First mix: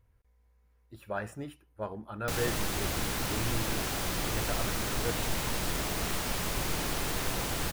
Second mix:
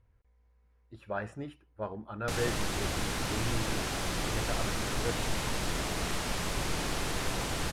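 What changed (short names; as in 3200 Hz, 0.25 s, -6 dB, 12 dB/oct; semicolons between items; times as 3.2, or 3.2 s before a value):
speech: add high shelf 7300 Hz -12 dB; master: add Bessel low-pass 9400 Hz, order 4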